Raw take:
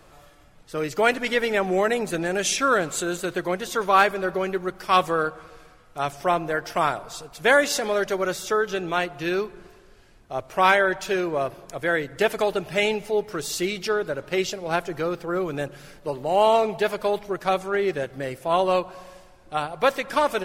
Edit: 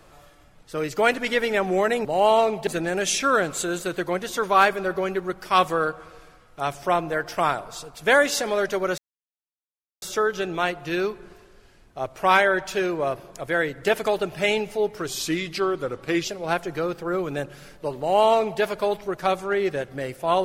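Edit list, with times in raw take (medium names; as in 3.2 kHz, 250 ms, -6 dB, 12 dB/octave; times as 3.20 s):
8.36 s: insert silence 1.04 s
13.41–14.47 s: speed 90%
16.21–16.83 s: copy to 2.05 s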